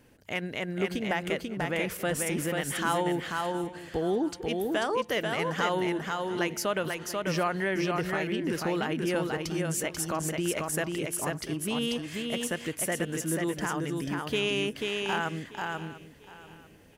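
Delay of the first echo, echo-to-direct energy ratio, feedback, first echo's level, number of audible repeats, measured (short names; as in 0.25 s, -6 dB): 0.489 s, -3.0 dB, no steady repeat, -3.5 dB, 6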